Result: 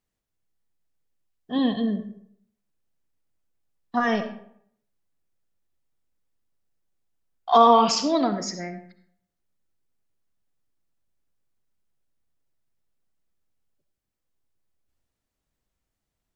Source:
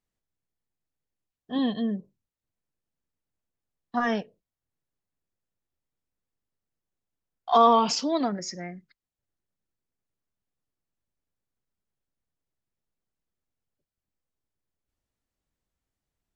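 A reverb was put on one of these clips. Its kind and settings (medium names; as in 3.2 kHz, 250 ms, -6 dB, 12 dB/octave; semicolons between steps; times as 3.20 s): algorithmic reverb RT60 0.66 s, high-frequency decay 0.65×, pre-delay 25 ms, DRR 9 dB; trim +3 dB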